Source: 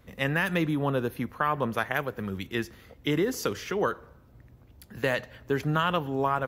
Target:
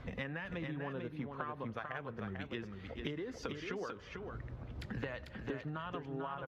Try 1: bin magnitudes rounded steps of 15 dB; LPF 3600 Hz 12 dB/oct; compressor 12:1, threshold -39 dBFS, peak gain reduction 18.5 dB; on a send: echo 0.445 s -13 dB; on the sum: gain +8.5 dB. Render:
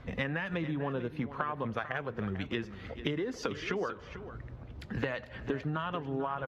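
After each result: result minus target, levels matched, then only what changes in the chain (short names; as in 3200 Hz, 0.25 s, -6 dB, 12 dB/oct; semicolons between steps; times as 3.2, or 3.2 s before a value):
compressor: peak gain reduction -8 dB; echo-to-direct -7.5 dB
change: compressor 12:1, threshold -47.5 dBFS, peak gain reduction 26 dB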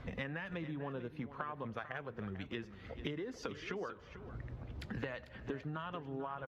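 echo-to-direct -7.5 dB
change: echo 0.445 s -5.5 dB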